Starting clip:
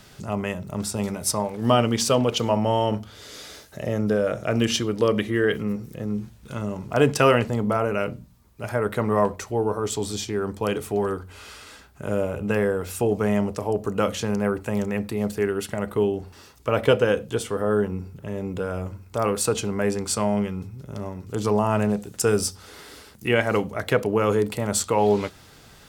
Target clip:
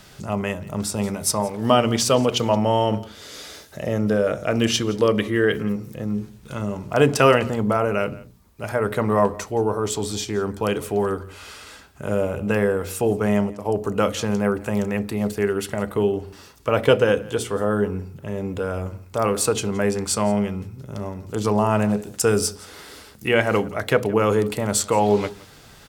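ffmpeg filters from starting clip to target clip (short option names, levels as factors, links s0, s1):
-filter_complex "[0:a]asplit=3[s0][s1][s2];[s0]afade=t=out:st=13.01:d=0.02[s3];[s1]agate=range=0.0224:threshold=0.0891:ratio=3:detection=peak,afade=t=in:st=13.01:d=0.02,afade=t=out:st=13.64:d=0.02[s4];[s2]afade=t=in:st=13.64:d=0.02[s5];[s3][s4][s5]amix=inputs=3:normalize=0,bandreject=f=60:t=h:w=6,bandreject=f=120:t=h:w=6,bandreject=f=180:t=h:w=6,bandreject=f=240:t=h:w=6,bandreject=f=300:t=h:w=6,bandreject=f=360:t=h:w=6,bandreject=f=420:t=h:w=6,aecho=1:1:171:0.0891,volume=1.33"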